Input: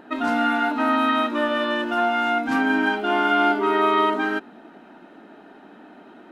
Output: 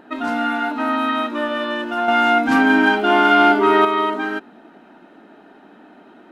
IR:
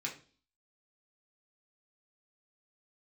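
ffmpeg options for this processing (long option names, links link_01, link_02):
-filter_complex "[0:a]asettb=1/sr,asplit=3[link_01][link_02][link_03];[link_01]atrim=end=2.084[link_04];[link_02]atrim=start=2.08:end=3.85,asetpts=PTS-STARTPTS,afade=type=in:duration=0.004:curve=qsin,afade=type=out:start_time=1.766:duration=0.004:curve=qsin,acontrast=78[link_05];[link_03]atrim=start=3.846[link_06];[link_04][link_05]acrossfade=duration=0.004:curve1=hsin:curve2=qsin[link_07];[link_07][link_06]acrossfade=duration=0.004:curve1=qsin:curve2=hsin"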